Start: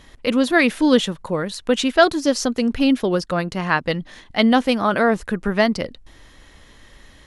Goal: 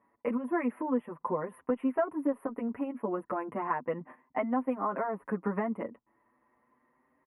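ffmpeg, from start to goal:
-filter_complex "[0:a]agate=range=-16dB:threshold=-37dB:ratio=16:detection=peak,highpass=230,equalizer=f=250:t=q:w=4:g=6,equalizer=f=1k:t=q:w=4:g=10,equalizer=f=1.6k:t=q:w=4:g=-8,equalizer=f=2.3k:t=q:w=4:g=-7,lowpass=f=9.2k:w=0.5412,lowpass=f=9.2k:w=1.3066,acompressor=threshold=-25dB:ratio=6,asuperstop=centerf=5300:order=12:qfactor=0.62,asplit=2[a][b];[b]adelay=6.7,afreqshift=0.35[c];[a][c]amix=inputs=2:normalize=1"

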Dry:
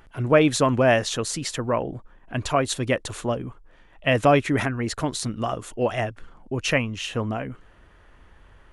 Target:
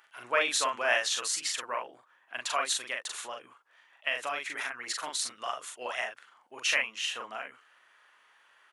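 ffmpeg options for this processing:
-filter_complex "[0:a]asplit=2[a][b];[b]adelay=41,volume=-3dB[c];[a][c]amix=inputs=2:normalize=0,asettb=1/sr,asplit=3[d][e][f];[d]atrim=end=2.794[g];[e]atrim=start=2.79:end=4.87,asetpts=PTS-STARTPTS,afade=t=in:d=0.004:c=qsin,afade=t=out:st=2.076:d=0.004:c=qsin,acompressor=threshold=-24dB:ratio=2[h];[f]atrim=start=4.866[i];[g][h]acrossfade=d=0.004:c1=hsin:c2=qsin[j];[j][i]acrossfade=d=0.004:c1=qsin:c2=hsin,highpass=1.2k,volume=-2.5dB"

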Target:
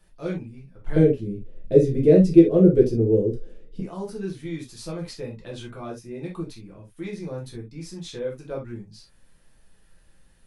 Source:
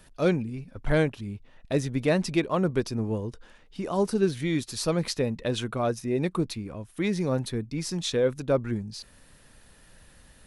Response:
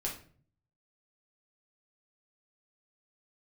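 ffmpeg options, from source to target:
-filter_complex "[0:a]asettb=1/sr,asplit=3[a][b][c];[a]atrim=end=0.964[d];[b]atrim=start=0.96:end=3.8,asetpts=PTS-STARTPTS,afade=t=in:d=0.004:c=qsin,afade=t=out:st=2.836:d=0.004:c=qsin,lowshelf=f=660:t=q:w=3:g=12.5[e];[c]atrim=start=3.796[f];[d][e]acrossfade=d=0.004:c1=hsin:c2=qsin[g];[g][f]acrossfade=d=0.004:c1=qsin:c2=hsin[h];[1:a]atrim=start_sample=2205,atrim=end_sample=3528[i];[h][i]afir=irnorm=-1:irlink=0,volume=-10dB"

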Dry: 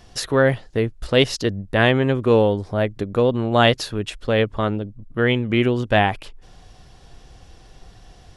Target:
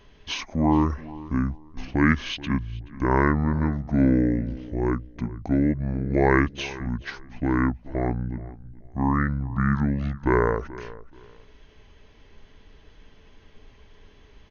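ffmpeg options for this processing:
-filter_complex "[0:a]asplit=2[a][b];[b]adelay=247,lowpass=f=4.7k:p=1,volume=-18dB,asplit=2[c][d];[d]adelay=247,lowpass=f=4.7k:p=1,volume=0.25[e];[c][e]amix=inputs=2:normalize=0[f];[a][f]amix=inputs=2:normalize=0,asetrate=25442,aresample=44100,volume=-4.5dB"

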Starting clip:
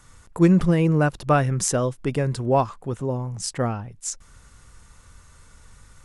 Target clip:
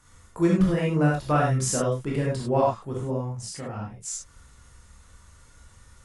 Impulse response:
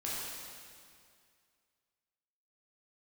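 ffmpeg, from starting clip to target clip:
-filter_complex "[0:a]asplit=3[a][b][c];[a]afade=t=out:st=3.29:d=0.02[d];[b]acompressor=threshold=-33dB:ratio=2.5,afade=t=in:st=3.29:d=0.02,afade=t=out:st=3.72:d=0.02[e];[c]afade=t=in:st=3.72:d=0.02[f];[d][e][f]amix=inputs=3:normalize=0[g];[1:a]atrim=start_sample=2205,atrim=end_sample=3969,asetrate=36603,aresample=44100[h];[g][h]afir=irnorm=-1:irlink=0,volume=-4dB"

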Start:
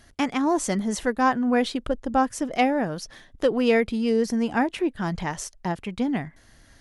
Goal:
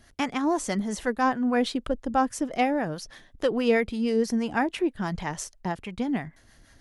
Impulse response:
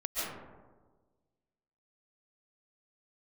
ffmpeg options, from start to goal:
-filter_complex "[0:a]acrossover=split=600[a][b];[a]aeval=exprs='val(0)*(1-0.5/2+0.5/2*cos(2*PI*6.2*n/s))':c=same[c];[b]aeval=exprs='val(0)*(1-0.5/2-0.5/2*cos(2*PI*6.2*n/s))':c=same[d];[c][d]amix=inputs=2:normalize=0"

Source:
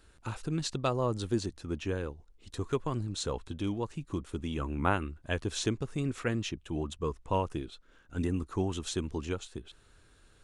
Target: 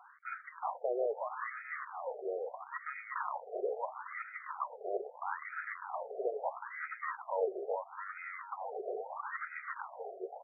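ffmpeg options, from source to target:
-af "areverse,acompressor=threshold=-39dB:ratio=20,areverse,asoftclip=type=tanh:threshold=-35.5dB,aecho=1:1:370|666|902.8|1092|1244:0.631|0.398|0.251|0.158|0.1,acrusher=samples=19:mix=1:aa=0.000001,afftfilt=real='re*between(b*sr/1024,520*pow(1800/520,0.5+0.5*sin(2*PI*0.76*pts/sr))/1.41,520*pow(1800/520,0.5+0.5*sin(2*PI*0.76*pts/sr))*1.41)':imag='im*between(b*sr/1024,520*pow(1800/520,0.5+0.5*sin(2*PI*0.76*pts/sr))/1.41,520*pow(1800/520,0.5+0.5*sin(2*PI*0.76*pts/sr))*1.41)':win_size=1024:overlap=0.75,volume=15.5dB"

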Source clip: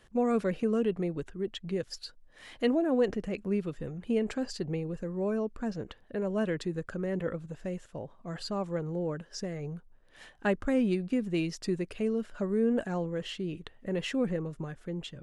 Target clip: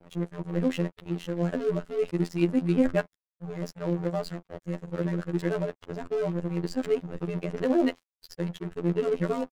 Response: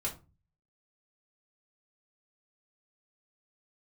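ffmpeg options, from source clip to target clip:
-filter_complex "[0:a]areverse,asplit=2[a][b];[1:a]atrim=start_sample=2205,asetrate=88200,aresample=44100,lowpass=2.4k[c];[b][c]afir=irnorm=-1:irlink=0,volume=-2dB[d];[a][d]amix=inputs=2:normalize=0,aeval=exprs='sgn(val(0))*max(abs(val(0))-0.00944,0)':c=same,afftfilt=real='hypot(re,im)*cos(PI*b)':imag='0':win_size=2048:overlap=0.75,atempo=1.6,volume=4.5dB"

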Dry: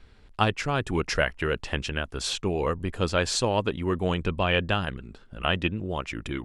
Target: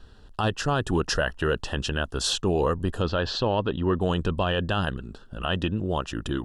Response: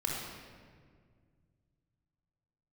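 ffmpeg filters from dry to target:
-filter_complex "[0:a]asuperstop=centerf=2200:order=4:qfactor=2.5,alimiter=limit=-18dB:level=0:latency=1:release=36,asettb=1/sr,asplit=3[a][b][c];[a]atrim=end=3.024[d];[b]atrim=start=3.02:end=4.01,asetpts=PTS-STARTPTS,afade=t=in:d=0.004:c=qsin,afade=t=out:st=0.986:d=0.004:c=qsin,lowpass=f=4.1k:w=0.5412,lowpass=f=4.1k:w=1.3066[e];[c]atrim=start=4.006[f];[d][e]acrossfade=d=0.004:c1=hsin:c2=qsin[g];[g][f]acrossfade=d=0.004:c1=qsin:c2=hsin,volume=4dB"

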